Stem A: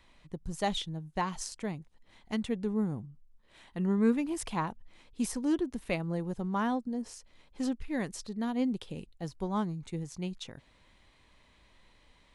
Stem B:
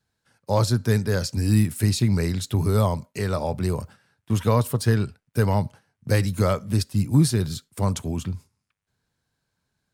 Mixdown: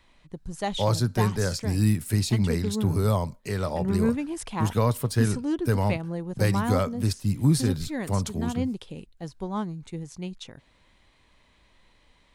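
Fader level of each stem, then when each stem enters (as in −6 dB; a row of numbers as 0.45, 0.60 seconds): +1.5, −3.0 decibels; 0.00, 0.30 seconds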